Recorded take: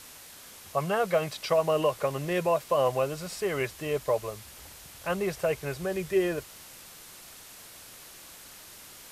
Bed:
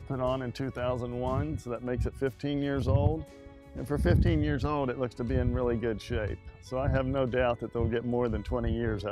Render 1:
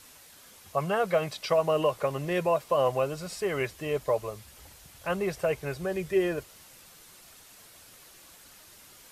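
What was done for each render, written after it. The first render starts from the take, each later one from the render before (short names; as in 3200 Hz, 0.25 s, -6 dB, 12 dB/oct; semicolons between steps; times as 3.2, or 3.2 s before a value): denoiser 6 dB, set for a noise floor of -49 dBFS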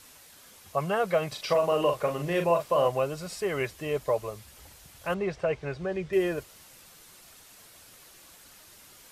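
1.28–2.87 doubler 41 ms -6 dB; 5.14–6.13 air absorption 120 m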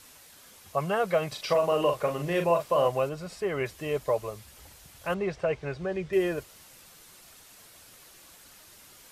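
3.09–3.66 high shelf 3800 Hz -9 dB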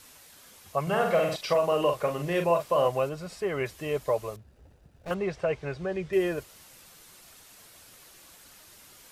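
0.82–1.36 flutter echo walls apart 8.2 m, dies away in 0.69 s; 4.36–5.11 median filter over 41 samples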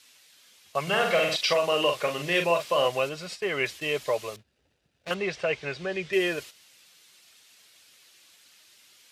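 gate -43 dBFS, range -11 dB; weighting filter D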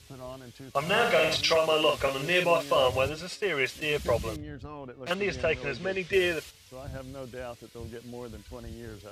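add bed -12 dB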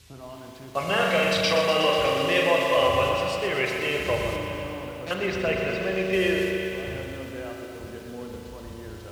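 spring tank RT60 3.3 s, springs 37 ms, chirp 50 ms, DRR 1.5 dB; lo-fi delay 0.122 s, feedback 80%, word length 8-bit, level -9 dB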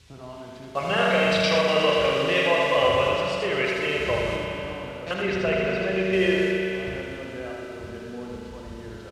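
air absorption 51 m; echo 79 ms -4 dB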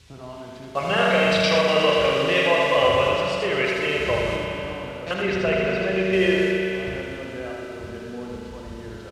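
gain +2 dB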